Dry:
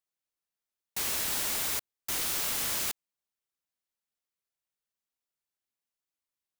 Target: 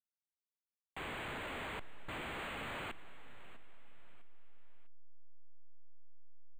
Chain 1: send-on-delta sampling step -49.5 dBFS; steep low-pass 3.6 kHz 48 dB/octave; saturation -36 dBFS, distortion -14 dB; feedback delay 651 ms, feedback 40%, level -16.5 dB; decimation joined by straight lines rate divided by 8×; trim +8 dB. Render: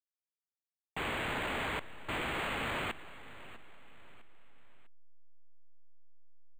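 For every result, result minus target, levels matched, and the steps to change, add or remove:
saturation: distortion -10 dB; send-on-delta sampling: distortion -7 dB
change: saturation -47.5 dBFS, distortion -4 dB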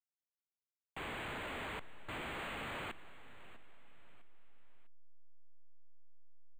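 send-on-delta sampling: distortion -7 dB
change: send-on-delta sampling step -38.5 dBFS

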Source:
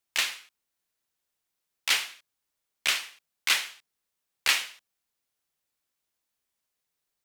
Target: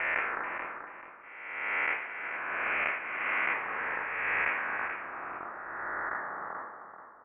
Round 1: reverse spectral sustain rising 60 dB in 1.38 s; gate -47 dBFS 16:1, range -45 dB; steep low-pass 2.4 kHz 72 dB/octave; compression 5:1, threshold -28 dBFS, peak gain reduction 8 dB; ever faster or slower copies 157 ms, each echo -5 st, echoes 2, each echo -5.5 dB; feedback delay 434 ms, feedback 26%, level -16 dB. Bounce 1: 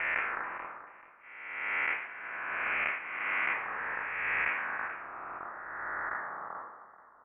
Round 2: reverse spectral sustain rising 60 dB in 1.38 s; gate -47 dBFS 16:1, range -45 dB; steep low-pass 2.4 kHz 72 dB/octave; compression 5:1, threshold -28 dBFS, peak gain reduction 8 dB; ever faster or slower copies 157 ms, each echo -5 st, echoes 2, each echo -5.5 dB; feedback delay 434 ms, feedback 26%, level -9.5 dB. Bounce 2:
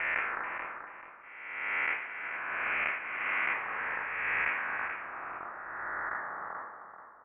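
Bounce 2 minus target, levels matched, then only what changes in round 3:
500 Hz band -3.0 dB
add after compression: peaking EQ 530 Hz +5 dB 2 oct

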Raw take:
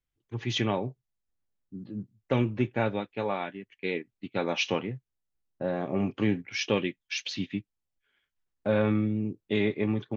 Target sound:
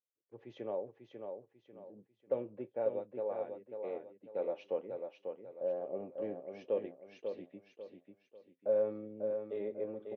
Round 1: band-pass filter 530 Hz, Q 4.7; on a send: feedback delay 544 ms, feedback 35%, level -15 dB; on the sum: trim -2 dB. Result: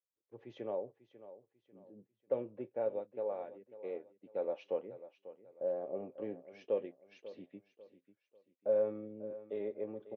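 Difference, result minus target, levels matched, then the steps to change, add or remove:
echo-to-direct -9 dB
change: feedback delay 544 ms, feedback 35%, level -6 dB

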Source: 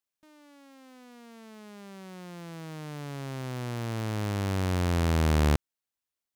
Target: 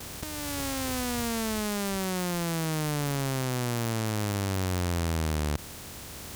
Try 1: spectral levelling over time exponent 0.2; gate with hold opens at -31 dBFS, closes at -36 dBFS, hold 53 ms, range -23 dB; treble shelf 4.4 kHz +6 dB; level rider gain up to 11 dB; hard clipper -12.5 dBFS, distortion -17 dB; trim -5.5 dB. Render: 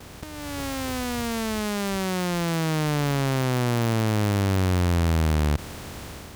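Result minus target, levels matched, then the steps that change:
8 kHz band -6.5 dB
change: treble shelf 4.4 kHz +17 dB

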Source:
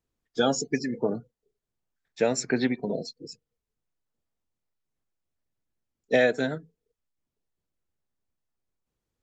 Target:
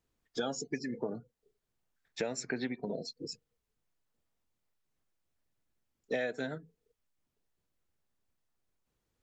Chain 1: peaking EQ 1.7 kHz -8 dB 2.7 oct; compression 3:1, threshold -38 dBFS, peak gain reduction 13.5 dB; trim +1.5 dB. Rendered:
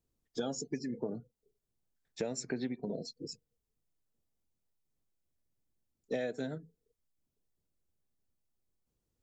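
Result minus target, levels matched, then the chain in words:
2 kHz band -6.5 dB
peaking EQ 1.7 kHz +2 dB 2.7 oct; compression 3:1, threshold -38 dBFS, peak gain reduction 16 dB; trim +1.5 dB

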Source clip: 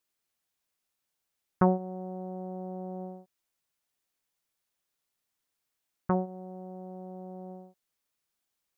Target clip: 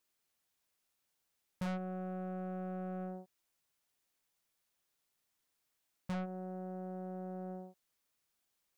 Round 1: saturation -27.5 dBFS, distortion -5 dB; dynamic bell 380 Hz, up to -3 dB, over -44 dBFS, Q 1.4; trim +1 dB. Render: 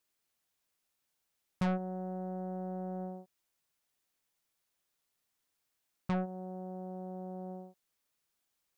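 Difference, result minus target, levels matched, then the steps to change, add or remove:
saturation: distortion -4 dB
change: saturation -35.5 dBFS, distortion -1 dB

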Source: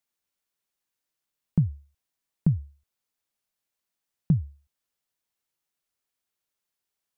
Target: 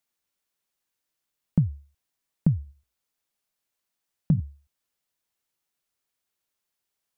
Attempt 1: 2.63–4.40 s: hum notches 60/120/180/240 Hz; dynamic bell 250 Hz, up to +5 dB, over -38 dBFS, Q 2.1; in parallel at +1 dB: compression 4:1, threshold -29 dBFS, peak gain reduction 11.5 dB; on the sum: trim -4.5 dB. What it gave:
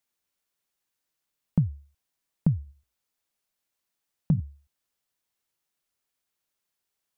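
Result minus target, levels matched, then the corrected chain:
compression: peak gain reduction +5 dB
2.63–4.40 s: hum notches 60/120/180/240 Hz; dynamic bell 250 Hz, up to +5 dB, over -38 dBFS, Q 2.1; in parallel at +1 dB: compression 4:1, threshold -22.5 dBFS, peak gain reduction 6.5 dB; on the sum: trim -4.5 dB

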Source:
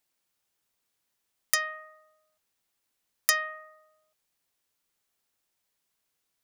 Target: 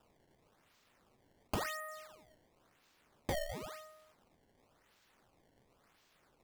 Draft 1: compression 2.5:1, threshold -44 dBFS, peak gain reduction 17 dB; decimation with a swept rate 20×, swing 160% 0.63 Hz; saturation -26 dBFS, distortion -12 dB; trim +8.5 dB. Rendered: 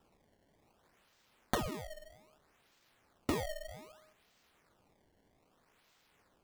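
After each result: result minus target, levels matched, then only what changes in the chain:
decimation with a swept rate: distortion +23 dB; saturation: distortion -9 dB
change: decimation with a swept rate 20×, swing 160% 0.95 Hz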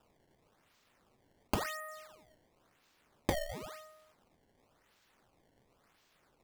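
saturation: distortion -7 dB
change: saturation -37 dBFS, distortion -4 dB

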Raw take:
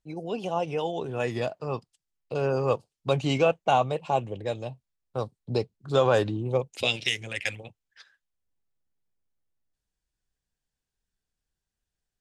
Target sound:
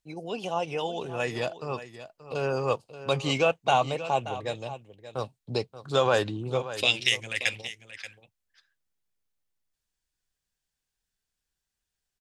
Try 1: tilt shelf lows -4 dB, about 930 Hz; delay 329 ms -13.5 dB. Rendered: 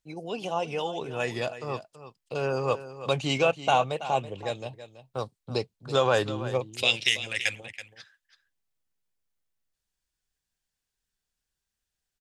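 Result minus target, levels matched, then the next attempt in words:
echo 251 ms early
tilt shelf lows -4 dB, about 930 Hz; delay 580 ms -13.5 dB

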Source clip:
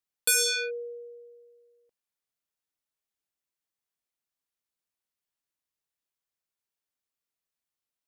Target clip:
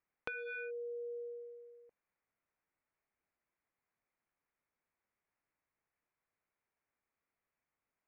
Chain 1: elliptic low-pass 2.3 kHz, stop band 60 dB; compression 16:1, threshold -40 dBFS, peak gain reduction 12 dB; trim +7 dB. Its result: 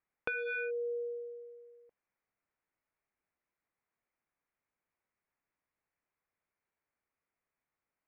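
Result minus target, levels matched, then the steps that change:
compression: peak gain reduction -6.5 dB
change: compression 16:1, threshold -47 dBFS, peak gain reduction 18.5 dB

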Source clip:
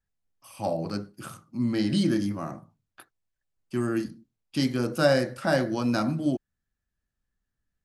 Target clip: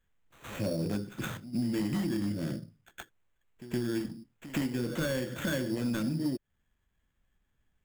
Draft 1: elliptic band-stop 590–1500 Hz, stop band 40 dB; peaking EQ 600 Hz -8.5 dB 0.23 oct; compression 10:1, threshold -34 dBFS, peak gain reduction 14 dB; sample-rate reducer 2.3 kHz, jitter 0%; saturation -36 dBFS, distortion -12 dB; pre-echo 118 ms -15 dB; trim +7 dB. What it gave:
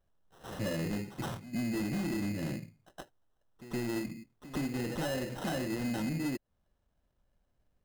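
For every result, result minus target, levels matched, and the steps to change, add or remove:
saturation: distortion +10 dB; sample-rate reducer: distortion +4 dB
change: saturation -28.5 dBFS, distortion -22 dB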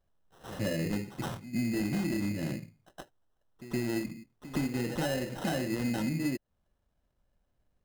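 sample-rate reducer: distortion +4 dB
change: sample-rate reducer 5 kHz, jitter 0%

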